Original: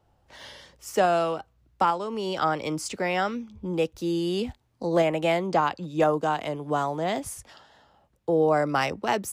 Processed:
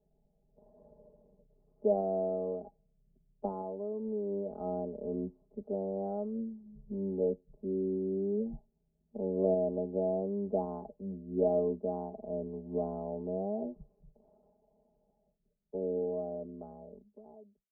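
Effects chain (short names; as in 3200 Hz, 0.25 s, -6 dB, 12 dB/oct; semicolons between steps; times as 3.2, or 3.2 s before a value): ending faded out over 1.90 s; steep low-pass 650 Hz 36 dB/oct; granular stretch 1.9×, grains 20 ms; gain -4.5 dB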